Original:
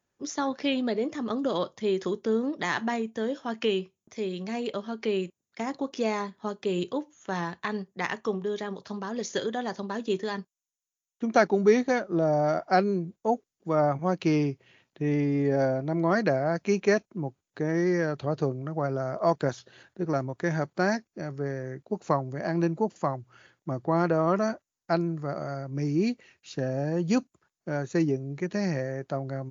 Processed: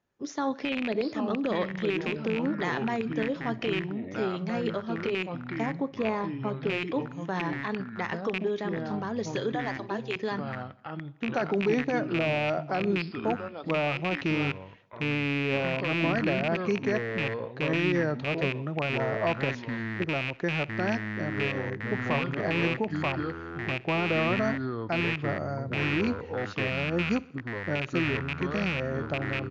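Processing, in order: rattle on loud lows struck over -31 dBFS, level -14 dBFS; 5.66–6.70 s: treble shelf 3.1 kHz -11.5 dB; 9.52–10.16 s: high-pass 520 Hz; peak limiter -18.5 dBFS, peak gain reduction 11 dB; feedback delay 63 ms, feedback 58%, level -23 dB; ever faster or slower copies 655 ms, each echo -5 st, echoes 2, each echo -6 dB; distance through air 130 m; trim +1 dB

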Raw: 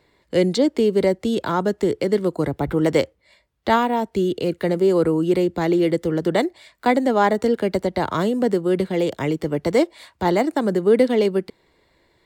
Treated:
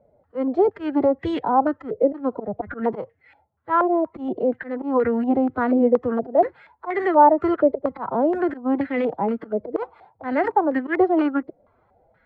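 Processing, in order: slow attack 158 ms; formant-preserving pitch shift +6.5 st; step-sequenced low-pass 4.2 Hz 590–1900 Hz; trim -2.5 dB

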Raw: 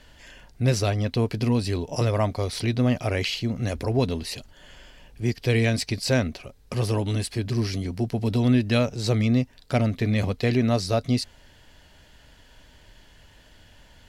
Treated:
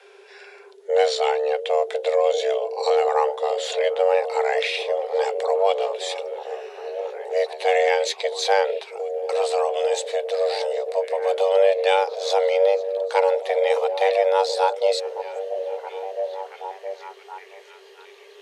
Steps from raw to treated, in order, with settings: gliding tape speed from 68% -> 85%; frequency shift +380 Hz; repeats whose band climbs or falls 672 ms, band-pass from 270 Hz, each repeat 0.7 oct, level -5 dB; trim +2 dB

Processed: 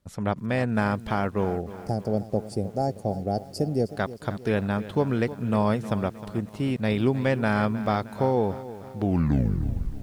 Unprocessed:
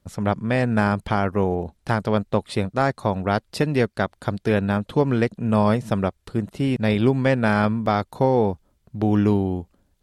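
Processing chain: tape stop on the ending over 1.02 s; time-frequency box 1.53–3.95 s, 850–4400 Hz -22 dB; bit-crushed delay 311 ms, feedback 55%, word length 7-bit, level -14.5 dB; trim -4.5 dB

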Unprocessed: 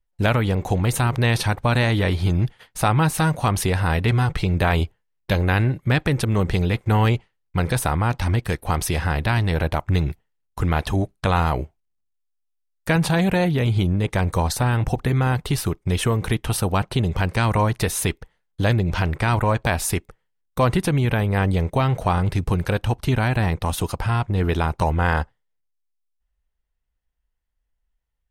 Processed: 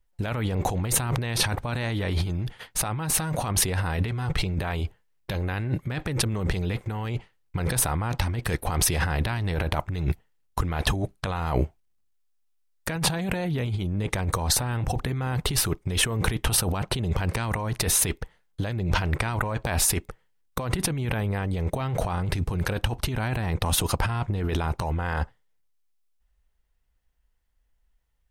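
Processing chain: compressor with a negative ratio -26 dBFS, ratio -1

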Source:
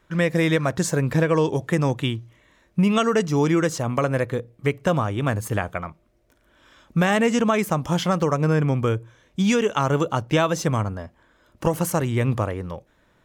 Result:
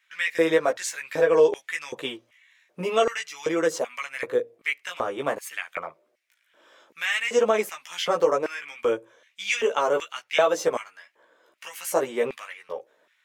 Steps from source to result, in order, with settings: chorus voices 2, 0.53 Hz, delay 15 ms, depth 2.8 ms; LFO high-pass square 1.3 Hz 480–2200 Hz

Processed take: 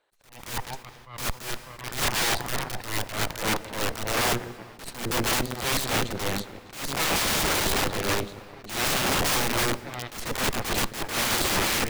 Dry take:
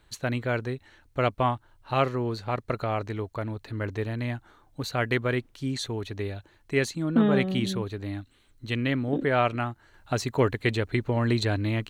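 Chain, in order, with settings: dynamic bell 270 Hz, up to +4 dB, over -40 dBFS, Q 1.6; in parallel at -1.5 dB: compression 16:1, threshold -31 dBFS, peak gain reduction 18 dB; on the sum: treble shelf 4.8 kHz -3.5 dB; two-band feedback delay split 390 Hz, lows 149 ms, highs 600 ms, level -12.5 dB; high-pass sweep 530 Hz -> 120 Hz, 1.64–5.01 s; Chebyshev shaper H 3 -12 dB, 6 -21 dB, 7 -24 dB, 8 -6 dB, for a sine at -3.5 dBFS; peak limiter -8.5 dBFS, peak gain reduction 10.5 dB; integer overflow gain 20 dB; on a send at -18 dB: reverberation RT60 3.9 s, pre-delay 82 ms; on the sum: attacks held to a fixed rise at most 110 dB/s

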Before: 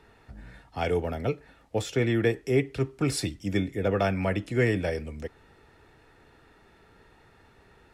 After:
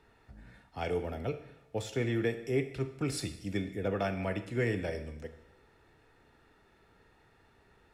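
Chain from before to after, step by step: Schroeder reverb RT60 0.88 s, combs from 26 ms, DRR 9.5 dB; trim -7 dB

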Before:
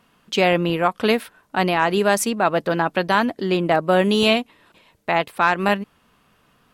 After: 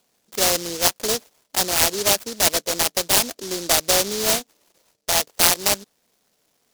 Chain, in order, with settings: local Wiener filter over 25 samples; high-pass 160 Hz 12 dB/octave; three-band isolator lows -17 dB, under 500 Hz, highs -15 dB, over 2.3 kHz; delay time shaken by noise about 5.1 kHz, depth 0.29 ms; trim +3 dB

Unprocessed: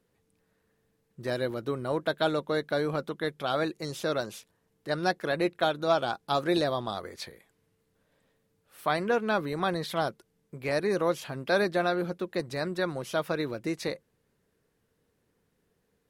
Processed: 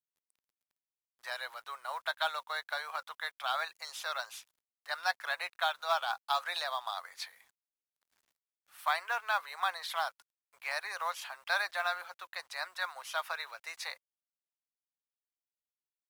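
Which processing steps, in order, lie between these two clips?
steep high-pass 800 Hz 36 dB/octave; treble shelf 3.9 kHz -2.5 dB; companded quantiser 6-bit

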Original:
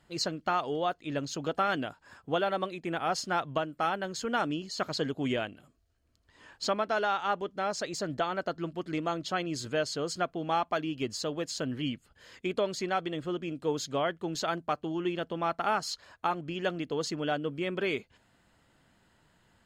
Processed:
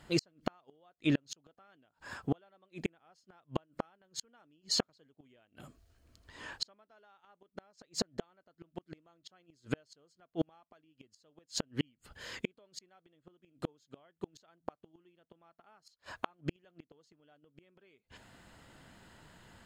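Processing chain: inverted gate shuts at -26 dBFS, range -42 dB; trim +8 dB

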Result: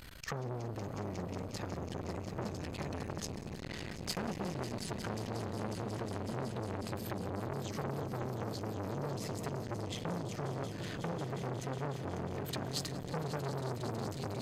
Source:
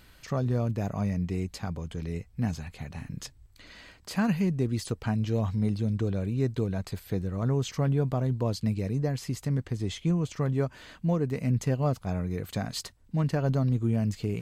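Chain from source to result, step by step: compression 16:1, threshold -38 dBFS, peak gain reduction 18 dB; on a send: echo with a slow build-up 182 ms, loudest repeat 5, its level -12 dB; on the sum: transformer saturation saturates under 1.2 kHz; trim +7.5 dB

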